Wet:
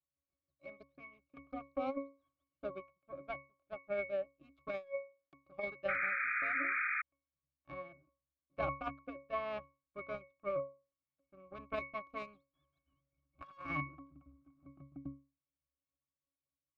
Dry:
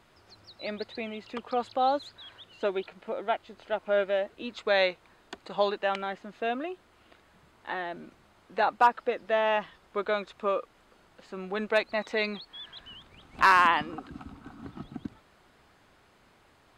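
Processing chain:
power curve on the samples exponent 2
resonances in every octave C#, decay 0.31 s
soft clipping −36 dBFS, distortion −12 dB
compressor whose output falls as the input rises −53 dBFS, ratio −0.5
sound drawn into the spectrogram noise, 0:05.88–0:07.02, 1,200–2,500 Hz −51 dBFS
level +15.5 dB

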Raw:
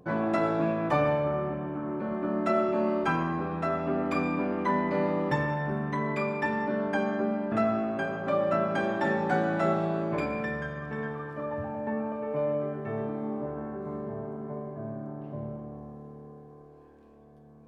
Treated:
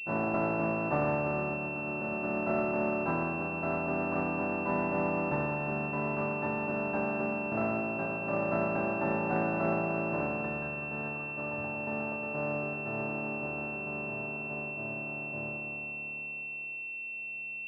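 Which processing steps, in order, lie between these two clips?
compressor on every frequency bin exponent 0.4
downward expander −18 dBFS
switching amplifier with a slow clock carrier 2,700 Hz
level −5.5 dB

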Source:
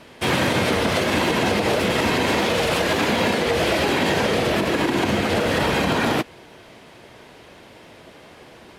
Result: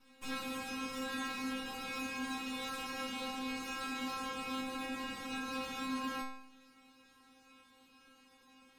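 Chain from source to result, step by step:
lower of the sound and its delayed copy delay 0.77 ms
in parallel at +3 dB: brickwall limiter −19 dBFS, peak gain reduction 9 dB
on the sum: stiff-string resonator 260 Hz, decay 0.73 s, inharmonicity 0.002
level −5 dB

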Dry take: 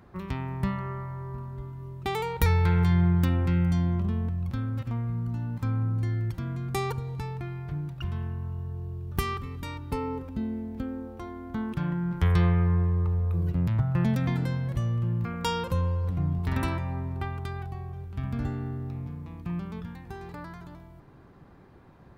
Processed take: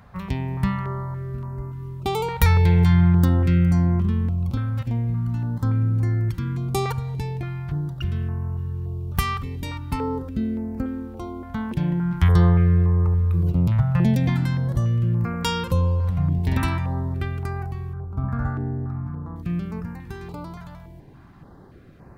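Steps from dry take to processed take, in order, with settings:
0:17.93–0:19.36: high shelf with overshoot 2,000 Hz −12.5 dB, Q 3
notch on a step sequencer 3.5 Hz 340–3,400 Hz
level +6.5 dB

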